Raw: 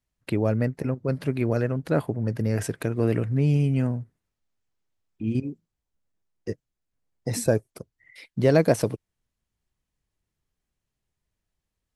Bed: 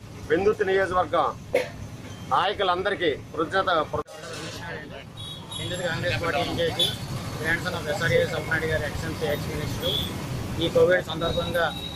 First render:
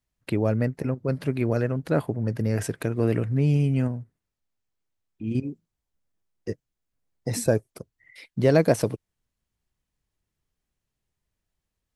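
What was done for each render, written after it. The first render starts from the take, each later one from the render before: 3.88–5.31 gain -3 dB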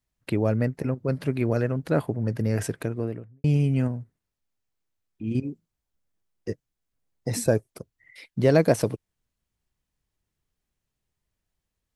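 2.64–3.44 studio fade out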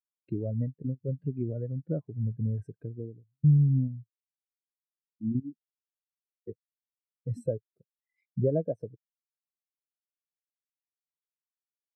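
compressor 2.5:1, threshold -29 dBFS, peak gain reduction 10.5 dB; spectral expander 2.5:1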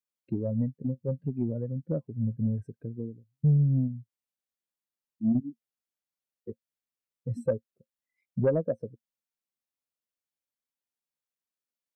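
small resonant body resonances 230/530 Hz, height 8 dB, ringing for 75 ms; soft clip -15.5 dBFS, distortion -20 dB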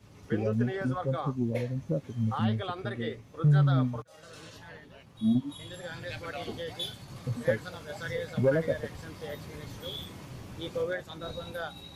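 add bed -13 dB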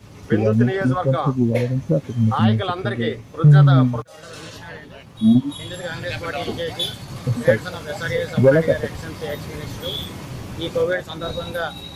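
gain +11.5 dB

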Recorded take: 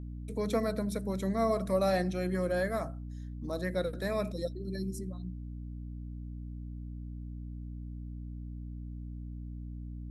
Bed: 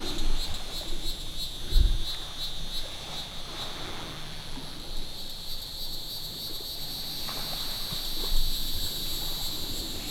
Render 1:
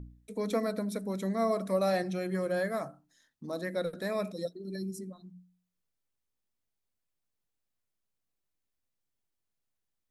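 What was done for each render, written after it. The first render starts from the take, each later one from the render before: de-hum 60 Hz, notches 5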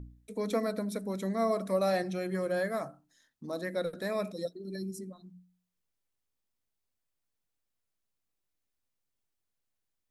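bell 170 Hz -2 dB 0.42 oct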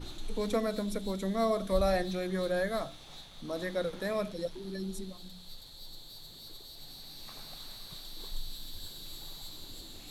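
add bed -13 dB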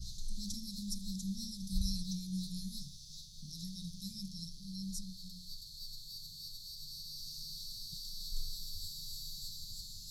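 Chebyshev band-stop 180–4900 Hz, order 4; band shelf 2600 Hz +10 dB 2.8 oct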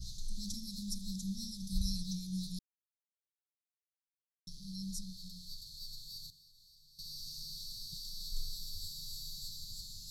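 2.59–4.47 mute; 6.3–6.99 level quantiser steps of 21 dB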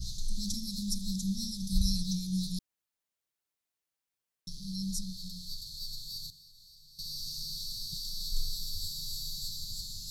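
gain +6.5 dB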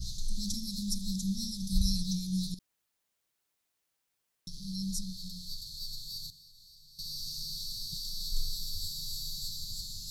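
2.54–4.53 negative-ratio compressor -44 dBFS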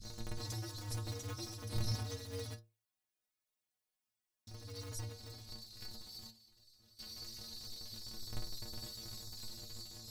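cycle switcher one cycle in 2, inverted; metallic resonator 110 Hz, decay 0.3 s, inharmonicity 0.008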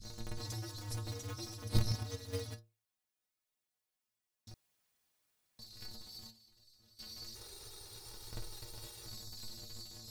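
1.64–2.55 transient shaper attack +11 dB, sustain -3 dB; 4.54–5.59 room tone; 7.35–9.07 minimum comb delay 2.1 ms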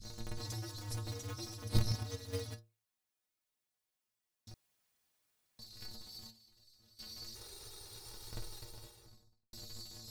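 8.46–9.53 studio fade out

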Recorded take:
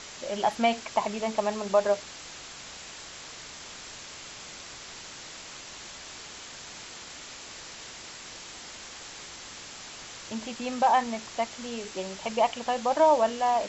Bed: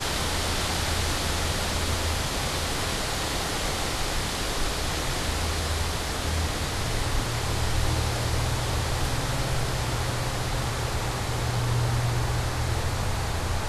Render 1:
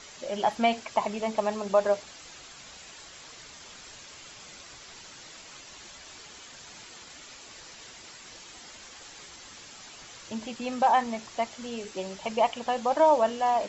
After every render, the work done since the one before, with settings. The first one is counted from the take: denoiser 7 dB, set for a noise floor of -44 dBFS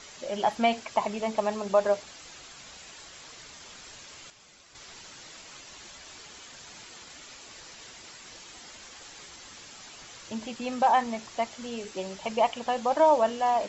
4.3–4.75 gain -8.5 dB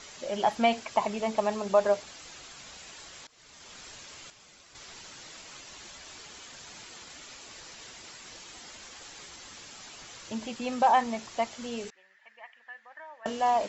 3.27–3.8 fade in, from -21.5 dB; 11.9–13.26 band-pass 1800 Hz, Q 13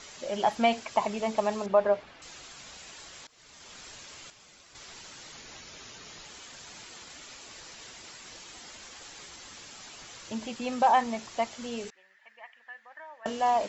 1.66–2.22 LPF 2500 Hz; 5.32–6.25 frequency shift -460 Hz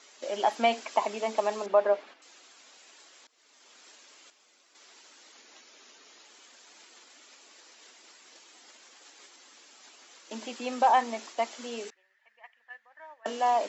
gate -45 dBFS, range -8 dB; steep high-pass 250 Hz 36 dB/oct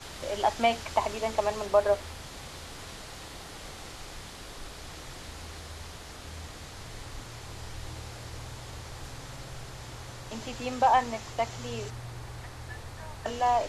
add bed -15.5 dB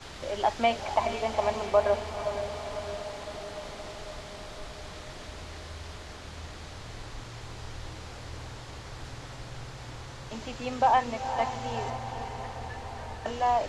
air absorption 56 m; diffused feedback echo 0.478 s, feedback 67%, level -8.5 dB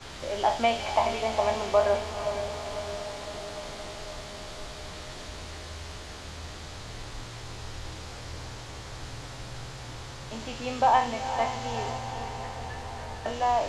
spectral trails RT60 0.34 s; thin delay 76 ms, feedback 79%, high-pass 3400 Hz, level -4 dB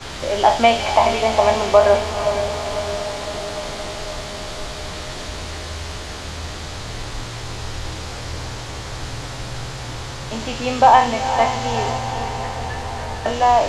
gain +10.5 dB; limiter -1 dBFS, peak gain reduction 1.5 dB

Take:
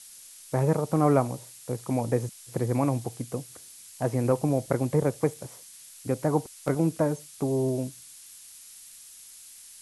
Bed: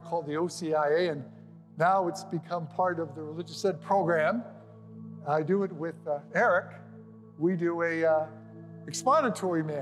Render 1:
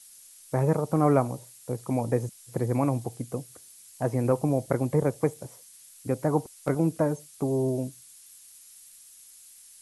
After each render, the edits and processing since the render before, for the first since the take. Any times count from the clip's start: denoiser 6 dB, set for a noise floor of -49 dBFS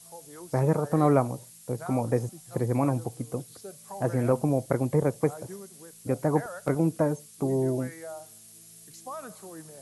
add bed -15.5 dB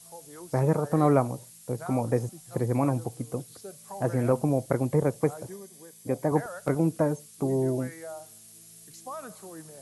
5.49–6.32 notch comb 1400 Hz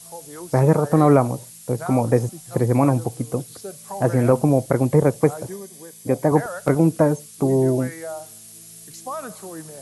gain +8 dB; limiter -3 dBFS, peak gain reduction 2.5 dB

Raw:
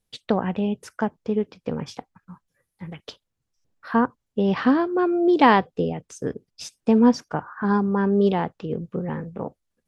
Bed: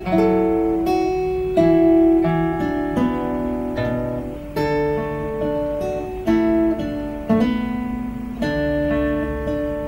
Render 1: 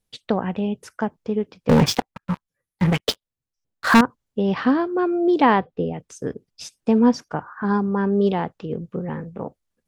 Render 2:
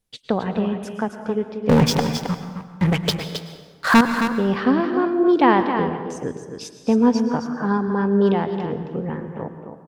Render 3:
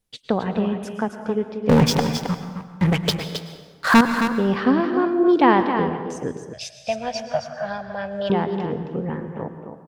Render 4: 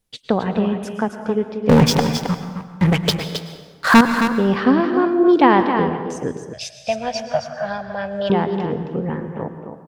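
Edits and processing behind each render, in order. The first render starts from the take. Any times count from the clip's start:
1.69–4.01 sample leveller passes 5; 5.41–5.94 air absorption 220 m
on a send: echo 0.267 s -8 dB; on the sum: plate-style reverb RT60 1.5 s, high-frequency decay 0.65×, pre-delay 95 ms, DRR 9.5 dB
6.53–8.3 EQ curve 130 Hz 0 dB, 200 Hz -16 dB, 280 Hz -26 dB, 440 Hz -20 dB, 630 Hz +14 dB, 950 Hz -13 dB, 1300 Hz -7 dB, 2400 Hz +9 dB, 12000 Hz -4 dB
gain +3 dB; limiter -2 dBFS, peak gain reduction 2.5 dB

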